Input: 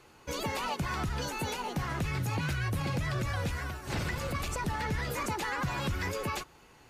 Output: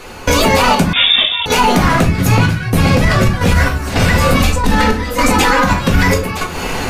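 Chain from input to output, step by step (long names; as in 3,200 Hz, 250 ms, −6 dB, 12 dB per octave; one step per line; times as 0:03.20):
0:04.34–0:05.67: comb filter 3.9 ms, depth 90%
downward compressor 10 to 1, threshold −44 dBFS, peak gain reduction 17.5 dB
gate pattern "..xxxx.xx" 110 BPM −12 dB
soft clipping −38 dBFS, distortion −23 dB
rectangular room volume 130 cubic metres, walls furnished, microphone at 1.8 metres
0:00.93–0:01.46: voice inversion scrambler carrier 3,600 Hz
boost into a limiter +35 dB
level −1 dB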